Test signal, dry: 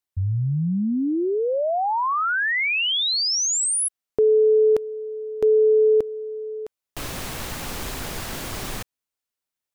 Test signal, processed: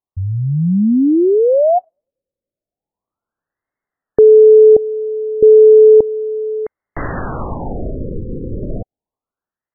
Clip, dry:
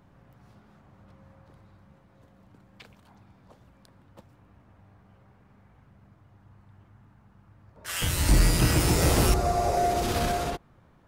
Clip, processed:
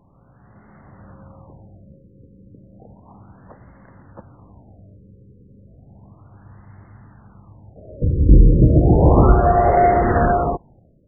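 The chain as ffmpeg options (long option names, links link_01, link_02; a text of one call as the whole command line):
ffmpeg -i in.wav -af "dynaudnorm=framelen=140:gausssize=9:maxgain=8dB,lowpass=frequency=4200:width_type=q:width=8.9,afftfilt=real='re*lt(b*sr/1024,530*pow(2200/530,0.5+0.5*sin(2*PI*0.33*pts/sr)))':imag='im*lt(b*sr/1024,530*pow(2200/530,0.5+0.5*sin(2*PI*0.33*pts/sr)))':win_size=1024:overlap=0.75,volume=3dB" out.wav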